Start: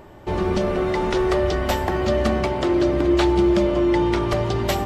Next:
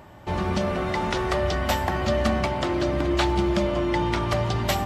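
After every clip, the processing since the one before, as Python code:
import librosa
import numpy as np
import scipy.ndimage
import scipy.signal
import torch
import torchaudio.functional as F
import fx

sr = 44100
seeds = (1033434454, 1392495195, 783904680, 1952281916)

y = scipy.signal.sosfilt(scipy.signal.butter(2, 55.0, 'highpass', fs=sr, output='sos'), x)
y = fx.peak_eq(y, sr, hz=390.0, db=-9.0, octaves=0.76)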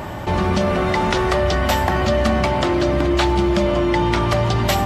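y = fx.env_flatten(x, sr, amount_pct=50)
y = y * librosa.db_to_amplitude(4.0)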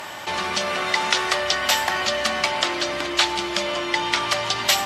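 y = fx.bandpass_q(x, sr, hz=5500.0, q=0.53)
y = y * librosa.db_to_amplitude(7.0)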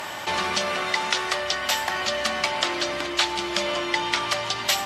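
y = fx.rider(x, sr, range_db=4, speed_s=0.5)
y = y * librosa.db_to_amplitude(-2.5)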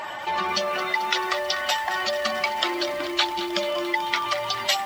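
y = fx.spec_expand(x, sr, power=1.7)
y = fx.echo_crushed(y, sr, ms=219, feedback_pct=80, bits=6, wet_db=-12.5)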